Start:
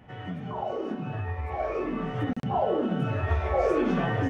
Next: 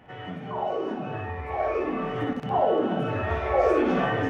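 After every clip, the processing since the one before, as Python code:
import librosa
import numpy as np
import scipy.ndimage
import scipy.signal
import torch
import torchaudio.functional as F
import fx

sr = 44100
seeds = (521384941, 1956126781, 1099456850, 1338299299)

y = fx.bass_treble(x, sr, bass_db=-8, treble_db=-4)
y = fx.echo_multitap(y, sr, ms=(59, 347), db=(-7.0, -12.5))
y = y * librosa.db_to_amplitude(3.0)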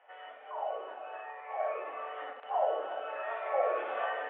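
y = scipy.signal.sosfilt(scipy.signal.ellip(3, 1.0, 50, [560.0, 3200.0], 'bandpass', fs=sr, output='sos'), x)
y = fx.air_absorb(y, sr, metres=230.0)
y = y * librosa.db_to_amplitude(-5.0)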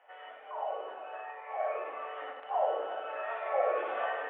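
y = x + 10.0 ** (-9.0 / 20.0) * np.pad(x, (int(98 * sr / 1000.0), 0))[:len(x)]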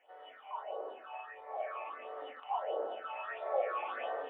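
y = fx.phaser_stages(x, sr, stages=6, low_hz=410.0, high_hz=2500.0, hz=1.5, feedback_pct=50)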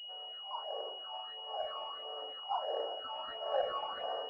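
y = scipy.signal.sosfilt(scipy.signal.butter(2, 440.0, 'highpass', fs=sr, output='sos'), x)
y = fx.pwm(y, sr, carrier_hz=2900.0)
y = y * librosa.db_to_amplitude(1.0)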